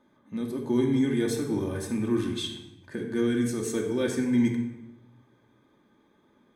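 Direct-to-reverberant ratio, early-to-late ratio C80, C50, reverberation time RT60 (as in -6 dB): 0.0 dB, 7.5 dB, 5.0 dB, 1.0 s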